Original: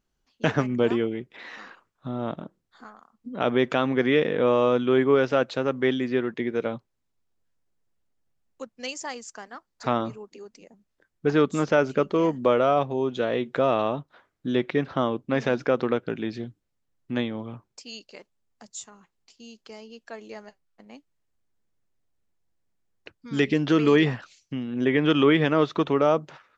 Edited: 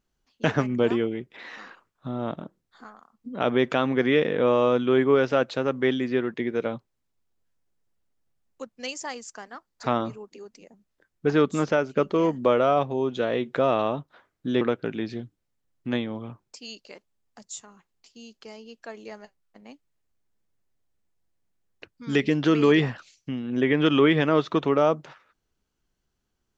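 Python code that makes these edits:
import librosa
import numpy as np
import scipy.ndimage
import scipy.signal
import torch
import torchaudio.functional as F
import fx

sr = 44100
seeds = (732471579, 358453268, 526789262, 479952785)

y = fx.edit(x, sr, fx.fade_out_to(start_s=11.67, length_s=0.29, floor_db=-11.0),
    fx.cut(start_s=14.61, length_s=1.24), tone=tone)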